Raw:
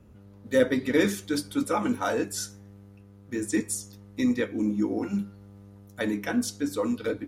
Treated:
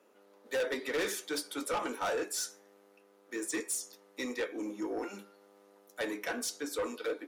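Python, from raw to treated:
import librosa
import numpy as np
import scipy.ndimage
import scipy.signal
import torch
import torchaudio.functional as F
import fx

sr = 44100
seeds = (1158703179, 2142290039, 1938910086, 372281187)

y = scipy.signal.sosfilt(scipy.signal.butter(4, 390.0, 'highpass', fs=sr, output='sos'), x)
y = 10.0 ** (-28.5 / 20.0) * np.tanh(y / 10.0 ** (-28.5 / 20.0))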